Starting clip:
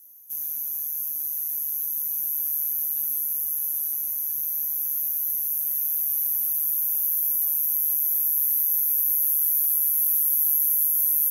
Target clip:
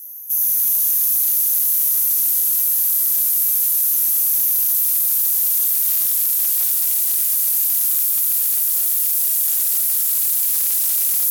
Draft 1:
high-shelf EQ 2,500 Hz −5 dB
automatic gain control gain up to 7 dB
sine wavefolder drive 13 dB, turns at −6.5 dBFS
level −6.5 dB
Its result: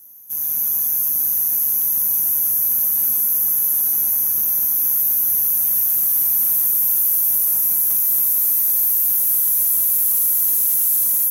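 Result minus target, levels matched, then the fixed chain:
4,000 Hz band −9.0 dB
high-shelf EQ 2,500 Hz +4 dB
automatic gain control gain up to 7 dB
sine wavefolder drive 13 dB, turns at −6.5 dBFS
level −6.5 dB

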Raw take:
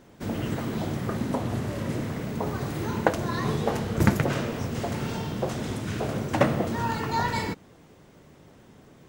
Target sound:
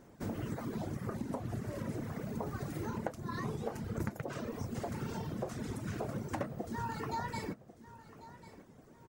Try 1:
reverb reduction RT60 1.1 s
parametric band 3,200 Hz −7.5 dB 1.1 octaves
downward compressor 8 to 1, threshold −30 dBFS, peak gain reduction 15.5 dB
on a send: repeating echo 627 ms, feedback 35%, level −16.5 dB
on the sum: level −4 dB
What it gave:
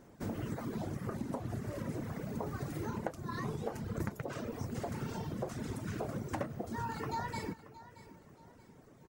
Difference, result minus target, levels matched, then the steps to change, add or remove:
echo 467 ms early
change: repeating echo 1,094 ms, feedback 35%, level −16.5 dB

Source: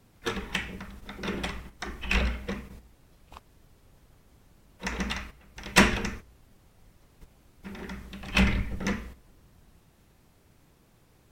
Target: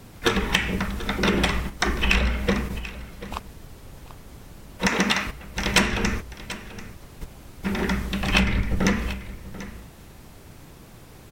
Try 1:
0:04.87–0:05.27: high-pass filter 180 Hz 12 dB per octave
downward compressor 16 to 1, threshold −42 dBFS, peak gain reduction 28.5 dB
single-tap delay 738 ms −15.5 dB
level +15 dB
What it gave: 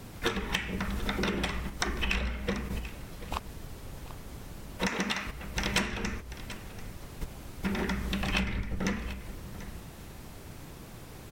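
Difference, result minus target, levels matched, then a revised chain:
downward compressor: peak gain reduction +10 dB
0:04.87–0:05.27: high-pass filter 180 Hz 12 dB per octave
downward compressor 16 to 1, threshold −31.5 dBFS, peak gain reduction 18.5 dB
single-tap delay 738 ms −15.5 dB
level +15 dB

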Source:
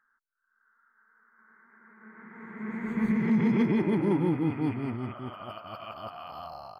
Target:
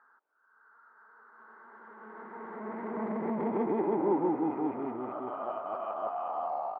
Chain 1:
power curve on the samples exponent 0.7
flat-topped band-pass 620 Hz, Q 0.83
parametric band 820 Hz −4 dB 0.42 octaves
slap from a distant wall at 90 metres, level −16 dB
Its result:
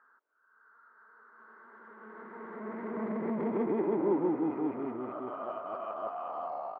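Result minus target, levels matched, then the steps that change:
1,000 Hz band −3.0 dB
change: parametric band 820 Hz +3.5 dB 0.42 octaves

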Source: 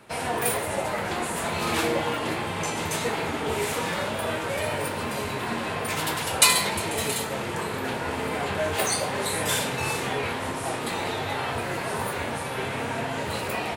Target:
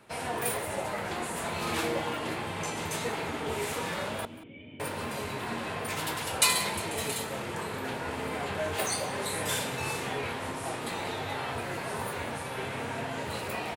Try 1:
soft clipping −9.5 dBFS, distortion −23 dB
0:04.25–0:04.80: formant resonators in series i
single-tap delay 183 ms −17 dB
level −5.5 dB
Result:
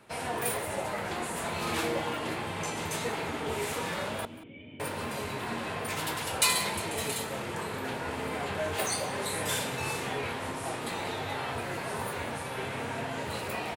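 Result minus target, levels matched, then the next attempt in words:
soft clipping: distortion +10 dB
soft clipping −2.5 dBFS, distortion −32 dB
0:04.25–0:04.80: formant resonators in series i
single-tap delay 183 ms −17 dB
level −5.5 dB

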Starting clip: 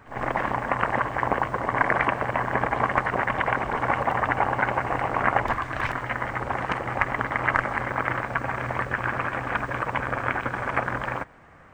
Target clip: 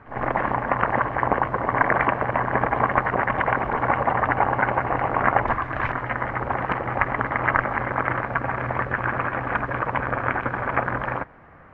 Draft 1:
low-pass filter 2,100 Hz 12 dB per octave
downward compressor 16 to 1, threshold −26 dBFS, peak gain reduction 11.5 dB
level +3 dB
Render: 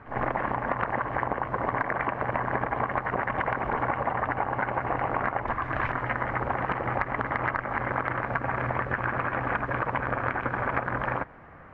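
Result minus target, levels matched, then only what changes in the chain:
downward compressor: peak gain reduction +11.5 dB
remove: downward compressor 16 to 1, threshold −26 dBFS, peak gain reduction 11.5 dB

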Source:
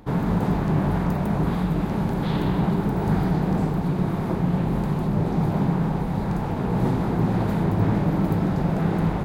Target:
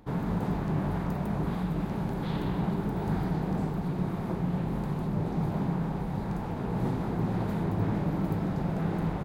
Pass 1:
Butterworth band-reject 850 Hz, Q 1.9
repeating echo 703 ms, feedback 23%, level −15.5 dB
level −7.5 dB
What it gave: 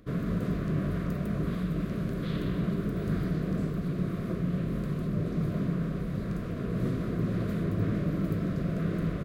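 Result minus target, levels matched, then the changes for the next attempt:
1,000 Hz band −8.5 dB
remove: Butterworth band-reject 850 Hz, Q 1.9

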